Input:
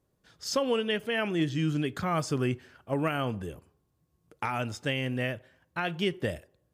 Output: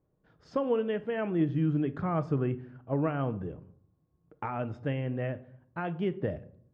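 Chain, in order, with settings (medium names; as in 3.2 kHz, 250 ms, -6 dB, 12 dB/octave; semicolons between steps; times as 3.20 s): Bessel low-pass 970 Hz, order 2; simulated room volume 770 m³, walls furnished, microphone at 0.54 m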